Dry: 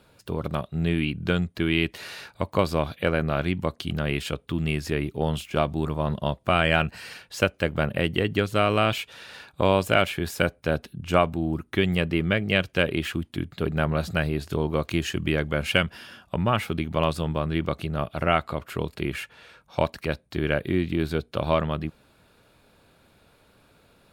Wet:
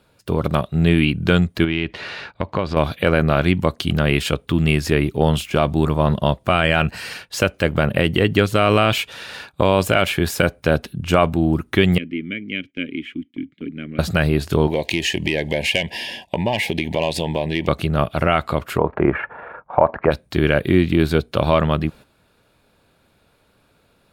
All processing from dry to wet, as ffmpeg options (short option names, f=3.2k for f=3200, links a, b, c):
-filter_complex "[0:a]asettb=1/sr,asplit=3[a][b][c];[a]atrim=end=1.644[d];[b]atrim=start=1.64:end=2.77,asetpts=PTS-STARTPTS,afade=t=in:d=0.004:c=qsin,afade=t=out:st=1.126:d=0.004:c=qsin,lowpass=3.5k,acompressor=threshold=-28dB:ratio=2.5:attack=3.2:release=140:knee=1:detection=peak[e];[c]atrim=start=2.766[f];[d][e]acrossfade=d=0.004:c1=hsin:c2=qsin[g];[g][f]acrossfade=d=0.004:c1=qsin:c2=hsin,asettb=1/sr,asplit=3[h][i][j];[h]atrim=end=11.984[k];[i]atrim=start=11.98:end=13.99,asetpts=PTS-STARTPTS,afade=t=in:d=0.004:c=qsin,afade=t=out:st=2.006:d=0.004:c=qsin,asplit=3[l][m][n];[l]bandpass=f=270:t=q:w=8,volume=0dB[o];[m]bandpass=f=2.29k:t=q:w=8,volume=-6dB[p];[n]bandpass=f=3.01k:t=q:w=8,volume=-9dB[q];[o][p][q]amix=inputs=3:normalize=0,equalizer=f=4.3k:t=o:w=0.68:g=-8[r];[j]atrim=start=13.986[s];[k][r]acrossfade=d=0.004:c1=hsin:c2=qsin[t];[t][s]acrossfade=d=0.004:c1=qsin:c2=hsin,asettb=1/sr,asplit=3[u][v][w];[u]atrim=end=14.674[x];[v]atrim=start=14.67:end=17.68,asetpts=PTS-STARTPTS,afade=t=in:d=0.004:c=qsin,afade=t=out:st=3.006:d=0.004:c=qsin,asplit=2[y][z];[z]highpass=f=720:p=1,volume=14dB,asoftclip=type=tanh:threshold=-4dB[aa];[y][aa]amix=inputs=2:normalize=0,lowpass=f=4.5k:p=1,volume=-6dB,asuperstop=centerf=1300:order=8:qfactor=1.7,acompressor=threshold=-28dB:ratio=2.5:attack=3.2:release=140:knee=1:detection=peak[ab];[w]atrim=start=17.676[ac];[x][ab]acrossfade=d=0.004:c1=hsin:c2=qsin[ad];[ad][ac]acrossfade=d=0.004:c1=qsin:c2=hsin,asettb=1/sr,asplit=3[ae][af][ag];[ae]atrim=end=18.784[ah];[af]atrim=start=18.78:end=20.11,asetpts=PTS-STARTPTS,afade=t=in:d=0.004:c=qsin,afade=t=out:st=1.326:d=0.004:c=qsin,lowpass=f=1.8k:w=0.5412,lowpass=f=1.8k:w=1.3066,equalizer=f=810:w=0.57:g=14.5,tremolo=f=26:d=0.4[ai];[ag]atrim=start=20.106[aj];[ah][ai]acrossfade=d=0.004:c1=hsin:c2=qsin[ak];[ak][aj]acrossfade=d=0.004:c1=qsin:c2=hsin,agate=range=-10dB:threshold=-46dB:ratio=16:detection=peak,alimiter=level_in=10dB:limit=-1dB:release=50:level=0:latency=1,volume=-1dB"